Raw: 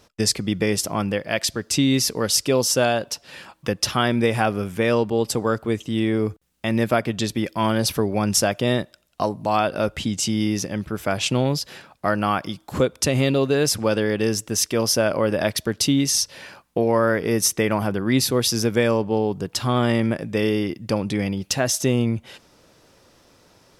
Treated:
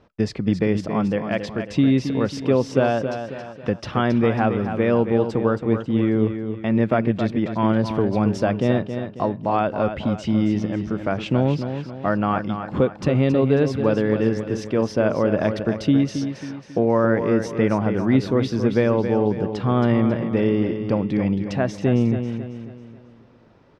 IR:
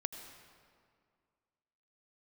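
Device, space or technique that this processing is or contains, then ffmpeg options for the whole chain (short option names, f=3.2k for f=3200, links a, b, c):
phone in a pocket: -af "lowpass=3.1k,equalizer=f=200:t=o:w=1.5:g=3,highshelf=f=2.3k:g=-9,aecho=1:1:272|544|816|1088|1360:0.376|0.162|0.0695|0.0299|0.0128"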